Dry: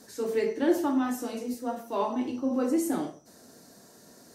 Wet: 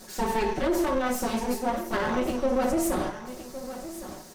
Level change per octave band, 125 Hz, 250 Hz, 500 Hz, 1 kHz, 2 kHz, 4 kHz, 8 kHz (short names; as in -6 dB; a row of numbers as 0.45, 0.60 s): +10.0, -0.5, +2.5, +5.5, +8.0, +7.0, +5.5 dB